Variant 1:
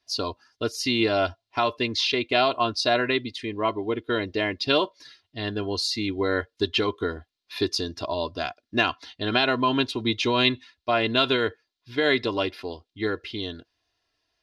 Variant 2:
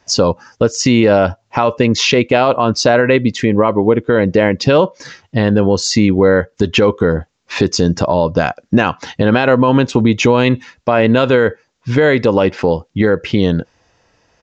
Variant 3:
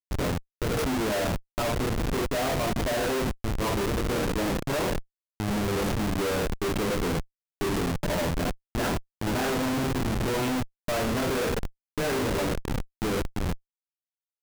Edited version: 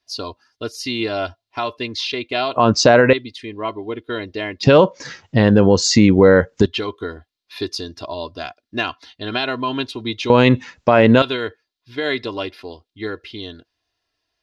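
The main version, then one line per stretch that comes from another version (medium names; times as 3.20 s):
1
2.56–3.13 s: from 2
4.63–6.66 s: from 2
10.30–11.22 s: from 2
not used: 3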